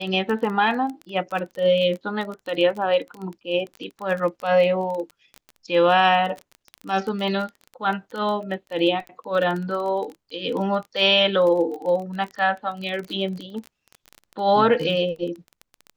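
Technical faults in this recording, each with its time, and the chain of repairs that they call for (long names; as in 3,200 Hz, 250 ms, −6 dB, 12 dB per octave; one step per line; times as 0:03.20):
surface crackle 20 per second −28 dBFS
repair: click removal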